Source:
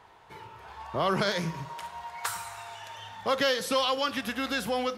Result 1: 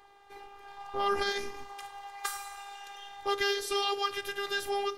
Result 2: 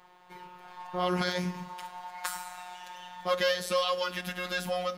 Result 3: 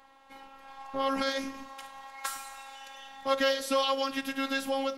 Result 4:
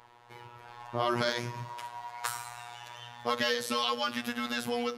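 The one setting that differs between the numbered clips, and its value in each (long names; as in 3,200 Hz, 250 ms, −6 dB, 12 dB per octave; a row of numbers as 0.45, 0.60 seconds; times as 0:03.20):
phases set to zero, frequency: 400, 180, 270, 120 Hertz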